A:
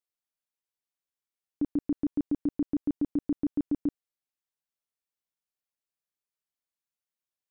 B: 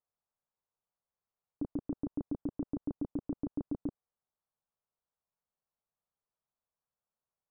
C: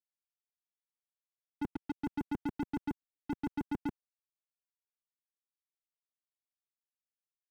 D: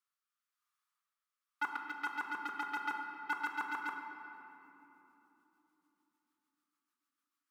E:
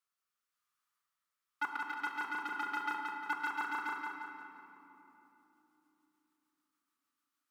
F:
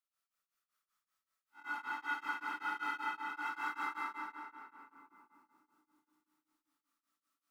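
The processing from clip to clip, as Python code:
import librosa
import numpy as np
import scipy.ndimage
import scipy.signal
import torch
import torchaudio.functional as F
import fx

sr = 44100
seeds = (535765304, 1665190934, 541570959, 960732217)

y1 = scipy.signal.sosfilt(scipy.signal.butter(4, 1200.0, 'lowpass', fs=sr, output='sos'), x)
y1 = fx.peak_eq(y1, sr, hz=300.0, db=-13.0, octaves=0.49)
y1 = fx.level_steps(y1, sr, step_db=9)
y1 = y1 * librosa.db_to_amplitude(8.0)
y2 = fx.step_gate(y1, sr, bpm=196, pattern='xxxxxxx.x.xxxxxx', floor_db=-60.0, edge_ms=4.5)
y2 = fx.leveller(y2, sr, passes=5)
y2 = fx.band_widen(y2, sr, depth_pct=40)
y2 = y2 * librosa.db_to_amplitude(-5.5)
y3 = fx.rotary_switch(y2, sr, hz=1.0, then_hz=6.7, switch_at_s=1.52)
y3 = fx.highpass_res(y3, sr, hz=1200.0, q=7.2)
y3 = fx.room_shoebox(y3, sr, seeds[0], volume_m3=210.0, walls='hard', distance_m=0.37)
y3 = y3 * librosa.db_to_amplitude(6.0)
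y4 = fx.echo_feedback(y3, sr, ms=176, feedback_pct=43, wet_db=-4.0)
y5 = fx.spec_blur(y4, sr, span_ms=88.0)
y5 = fx.rev_freeverb(y5, sr, rt60_s=0.83, hf_ratio=1.0, predelay_ms=15, drr_db=-6.5)
y5 = y5 * np.abs(np.cos(np.pi * 5.2 * np.arange(len(y5)) / sr))
y5 = y5 * librosa.db_to_amplitude(-3.5)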